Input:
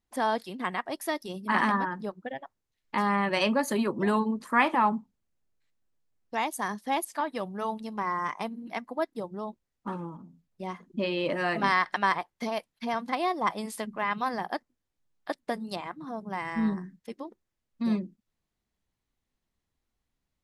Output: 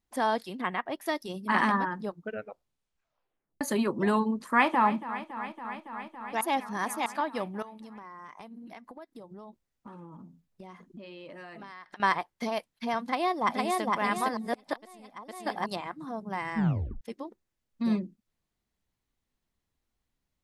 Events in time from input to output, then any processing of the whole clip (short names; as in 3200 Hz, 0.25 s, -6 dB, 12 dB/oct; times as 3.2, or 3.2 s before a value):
0.61–1.06 band shelf 6900 Hz -10 dB
2.08 tape stop 1.53 s
4.52–4.95 echo throw 0.28 s, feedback 85%, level -14 dB
6.41–7.06 reverse
7.62–12 compressor 10:1, threshold -42 dBFS
13.01–13.82 echo throw 0.46 s, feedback 40%, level -1.5 dB
14.37–15.66 reverse
16.57 tape stop 0.44 s